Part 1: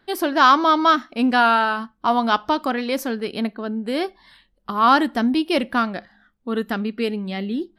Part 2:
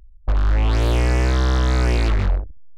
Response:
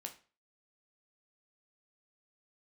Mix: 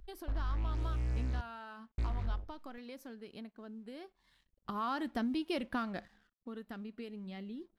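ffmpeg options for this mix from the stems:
-filter_complex "[0:a]lowshelf=f=130:g=11,acompressor=threshold=-27dB:ratio=5,aeval=exprs='sgn(val(0))*max(abs(val(0))-0.00141,0)':c=same,volume=-6dB,afade=t=in:st=4.33:d=0.71:silence=0.251189,afade=t=out:st=6.03:d=0.34:silence=0.354813,asplit=2[a][b];[1:a]acrossover=split=240[c][d];[d]acompressor=threshold=-37dB:ratio=3[e];[c][e]amix=inputs=2:normalize=0,volume=-8.5dB,asplit=3[f][g][h];[f]atrim=end=1.41,asetpts=PTS-STARTPTS,afade=t=out:st=1.406:d=0.004:c=hsin[i];[g]atrim=start=1.41:end=1.98,asetpts=PTS-STARTPTS,volume=0[j];[h]atrim=start=1.98,asetpts=PTS-STARTPTS,afade=t=in:d=0.004:c=hsin[k];[i][j][k]concat=n=3:v=0:a=1,asplit=2[l][m];[m]volume=-13.5dB[n];[b]apad=whole_len=122549[o];[l][o]sidechaincompress=threshold=-54dB:ratio=5:attack=16:release=1320[p];[2:a]atrim=start_sample=2205[q];[n][q]afir=irnorm=-1:irlink=0[r];[a][p][r]amix=inputs=3:normalize=0"

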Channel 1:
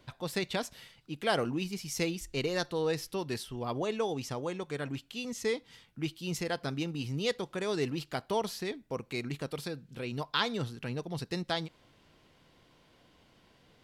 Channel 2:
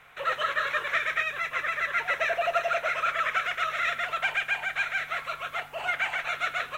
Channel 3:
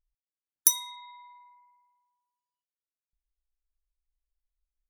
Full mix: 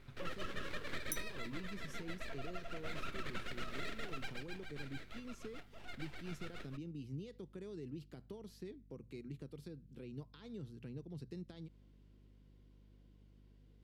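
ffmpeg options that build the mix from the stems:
-filter_complex "[0:a]alimiter=level_in=1dB:limit=-24dB:level=0:latency=1:release=35,volume=-1dB,acrossover=split=160[a][b];[b]acompressor=threshold=-41dB:ratio=2.5[c];[a][c]amix=inputs=2:normalize=0,volume=-17dB,asplit=2[d][e];[1:a]aeval=exprs='max(val(0),0)':c=same,volume=-0.5dB,afade=t=out:st=1.19:d=0.49:silence=0.375837,afade=t=in:st=2.78:d=0.21:silence=0.398107,afade=t=out:st=4.06:d=0.38:silence=0.316228[f];[2:a]adelay=450,volume=-17.5dB[g];[e]apad=whole_len=235774[h];[g][h]sidechaincompress=threshold=-57dB:ratio=8:attack=16:release=390[i];[d][f]amix=inputs=2:normalize=0,lowshelf=f=520:t=q:w=1.5:g=9,acompressor=threshold=-36dB:ratio=5,volume=0dB[j];[i][j]amix=inputs=2:normalize=0,bandreject=f=60:t=h:w=6,bandreject=f=120:t=h:w=6,aeval=exprs='val(0)+0.000794*(sin(2*PI*50*n/s)+sin(2*PI*2*50*n/s)/2+sin(2*PI*3*50*n/s)/3+sin(2*PI*4*50*n/s)/4+sin(2*PI*5*50*n/s)/5)':c=same"

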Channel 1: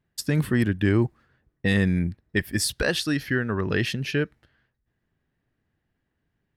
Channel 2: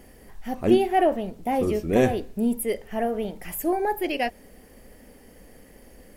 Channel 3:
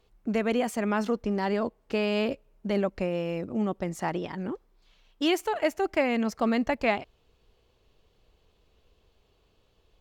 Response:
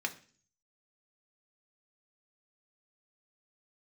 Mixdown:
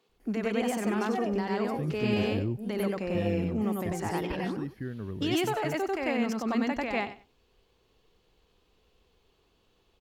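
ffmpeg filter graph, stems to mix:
-filter_complex "[0:a]tiltshelf=f=720:g=8.5,adelay=1500,volume=-17dB[a];[1:a]adelay=200,volume=-18.5dB,asplit=2[b][c];[c]volume=-4.5dB[d];[2:a]equalizer=f=610:w=6.1:g=-6.5,volume=-1dB,asplit=2[e][f];[f]volume=-3.5dB[g];[b][e]amix=inputs=2:normalize=0,highpass=f=170:w=0.5412,highpass=f=170:w=1.3066,alimiter=limit=-23.5dB:level=0:latency=1:release=25,volume=0dB[h];[3:a]atrim=start_sample=2205[i];[d][i]afir=irnorm=-1:irlink=0[j];[g]aecho=0:1:94|188|282:1|0.18|0.0324[k];[a][h][j][k]amix=inputs=4:normalize=0"

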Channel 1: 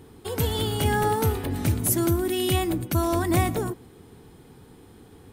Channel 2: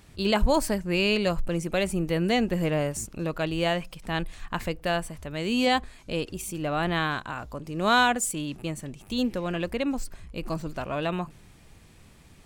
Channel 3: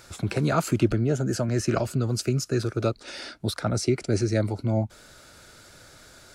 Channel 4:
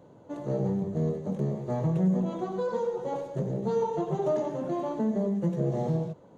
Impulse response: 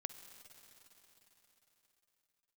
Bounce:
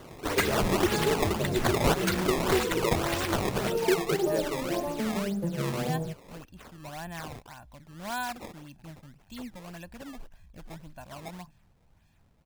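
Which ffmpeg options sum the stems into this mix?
-filter_complex "[0:a]aexciter=amount=6.9:drive=4.5:freq=4.4k,volume=-3.5dB[a];[1:a]aecho=1:1:1.2:0.8,adelay=200,volume=-15dB[b];[2:a]highpass=f=400:t=q:w=4.9,volume=-11dB[c];[3:a]volume=0dB[d];[a][d]amix=inputs=2:normalize=0,acompressor=threshold=-28dB:ratio=2.5,volume=0dB[e];[b][c][e]amix=inputs=3:normalize=0,acrusher=samples=17:mix=1:aa=0.000001:lfo=1:lforange=27.2:lforate=1.8"

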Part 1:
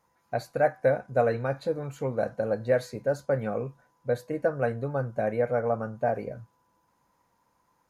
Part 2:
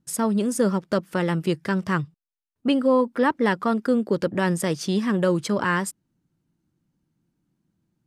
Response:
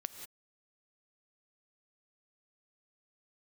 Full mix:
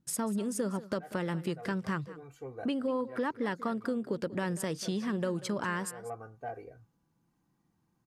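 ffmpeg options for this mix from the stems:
-filter_complex "[0:a]aecho=1:1:2.6:0.83,asoftclip=type=tanh:threshold=-13dB,adelay=400,volume=-14dB[a];[1:a]acompressor=threshold=-29dB:ratio=3,volume=-3dB,asplit=3[b][c][d];[c]volume=-16.5dB[e];[d]apad=whole_len=366083[f];[a][f]sidechaincompress=threshold=-48dB:ratio=4:attack=16:release=200[g];[e]aecho=0:1:190:1[h];[g][b][h]amix=inputs=3:normalize=0"

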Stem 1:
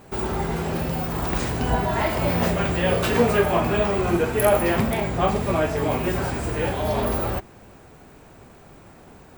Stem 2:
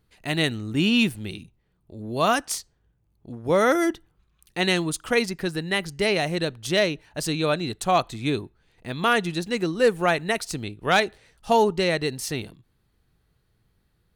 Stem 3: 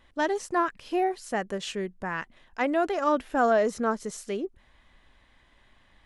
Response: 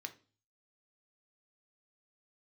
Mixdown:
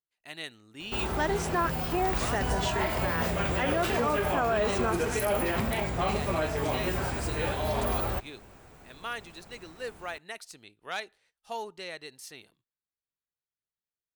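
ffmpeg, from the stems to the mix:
-filter_complex "[0:a]lowshelf=f=92:g=9.5,adelay=800,volume=-3.5dB[a];[1:a]agate=range=-13dB:threshold=-51dB:ratio=16:detection=peak,lowshelf=f=250:g=-11,volume=-13.5dB[b];[2:a]adelay=1000,volume=2dB[c];[a][b][c]amix=inputs=3:normalize=0,lowshelf=f=460:g=-7,alimiter=limit=-18dB:level=0:latency=1:release=55"

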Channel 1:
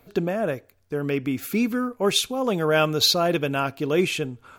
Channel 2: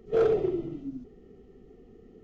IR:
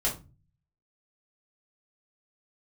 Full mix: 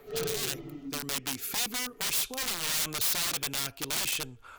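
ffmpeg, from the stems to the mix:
-filter_complex "[0:a]asubboost=boost=10:cutoff=57,aeval=exprs='(mod(11.2*val(0)+1,2)-1)/11.2':c=same,volume=-0.5dB[a];[1:a]equalizer=f=1.4k:t=o:w=2.2:g=8,aecho=1:1:7:0.9,volume=1dB[b];[a][b]amix=inputs=2:normalize=0,acrossover=split=240|3000[c][d][e];[d]acompressor=threshold=-38dB:ratio=4[f];[c][f][e]amix=inputs=3:normalize=0,lowshelf=f=350:g=-11.5"

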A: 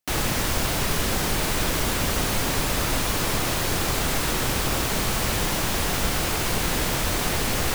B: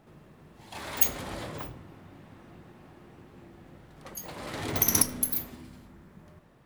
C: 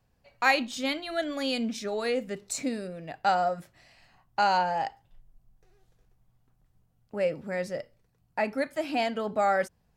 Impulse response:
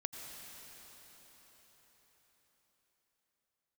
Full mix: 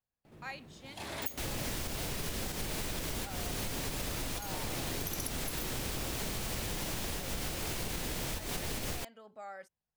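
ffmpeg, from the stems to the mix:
-filter_complex "[0:a]adelay=1300,volume=1.5dB[a];[1:a]adelay=250,volume=-0.5dB[b];[2:a]lowshelf=f=420:g=-8,volume=-19.5dB,asplit=2[c][d];[d]apad=whole_len=398955[e];[a][e]sidechaincompress=threshold=-53dB:ratio=8:attack=11:release=342[f];[f][b]amix=inputs=2:normalize=0,equalizer=f=1.2k:w=1.1:g=-5,acompressor=threshold=-28dB:ratio=6,volume=0dB[g];[c][g]amix=inputs=2:normalize=0,acompressor=threshold=-33dB:ratio=6"

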